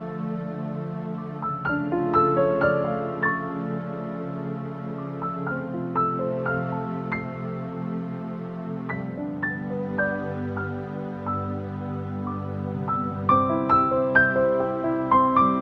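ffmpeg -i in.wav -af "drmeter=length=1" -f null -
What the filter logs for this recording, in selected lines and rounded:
Channel 1: DR: 9.8
Overall DR: 9.8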